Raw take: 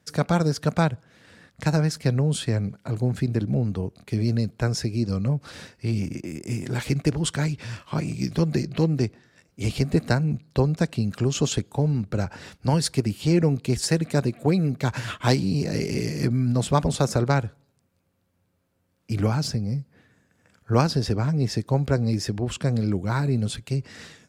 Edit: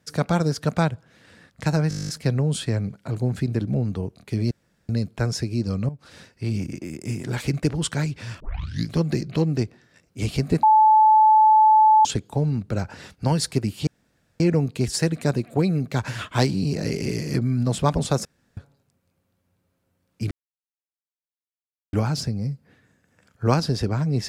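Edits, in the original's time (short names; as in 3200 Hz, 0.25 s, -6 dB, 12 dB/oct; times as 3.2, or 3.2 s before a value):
1.89 stutter 0.02 s, 11 plays
4.31 insert room tone 0.38 s
5.31–5.98 fade in, from -13 dB
7.82 tape start 0.49 s
10.05–11.47 bleep 867 Hz -11 dBFS
13.29 insert room tone 0.53 s
17.14–17.46 room tone
19.2 insert silence 1.62 s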